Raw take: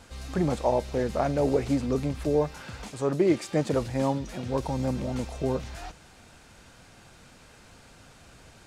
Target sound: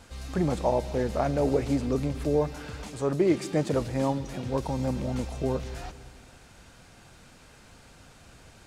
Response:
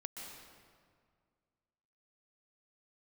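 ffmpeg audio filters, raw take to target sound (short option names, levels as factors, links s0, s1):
-filter_complex "[0:a]asplit=2[s0][s1];[1:a]atrim=start_sample=2205,lowshelf=f=200:g=9,highshelf=f=10000:g=11.5[s2];[s1][s2]afir=irnorm=-1:irlink=0,volume=0.251[s3];[s0][s3]amix=inputs=2:normalize=0,volume=0.794"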